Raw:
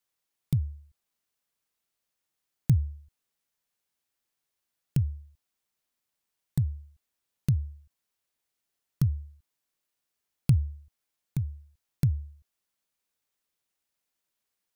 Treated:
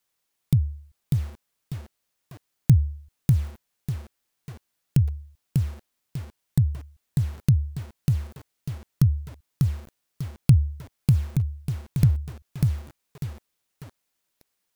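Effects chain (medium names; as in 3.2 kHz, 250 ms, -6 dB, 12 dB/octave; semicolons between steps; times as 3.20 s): bit-crushed delay 595 ms, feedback 35%, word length 8-bit, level -3 dB; trim +6 dB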